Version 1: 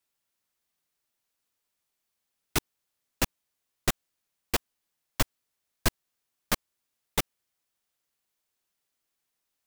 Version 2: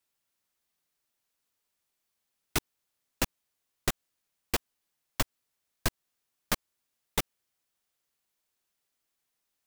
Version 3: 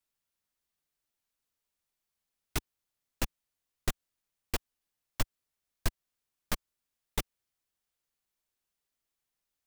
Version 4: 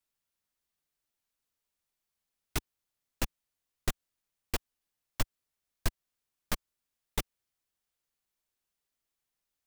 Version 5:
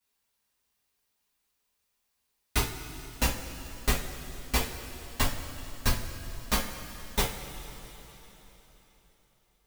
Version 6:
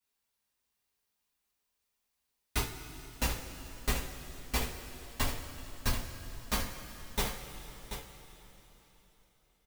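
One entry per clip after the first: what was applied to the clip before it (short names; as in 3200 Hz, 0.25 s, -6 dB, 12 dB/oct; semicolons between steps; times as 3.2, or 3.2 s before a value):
compressor, threshold -23 dBFS, peak gain reduction 5.5 dB
low shelf 84 Hz +9.5 dB; gain -5.5 dB
nothing audible
two-slope reverb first 0.31 s, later 4 s, from -18 dB, DRR -8.5 dB
echo 0.734 s -9.5 dB; gain -5 dB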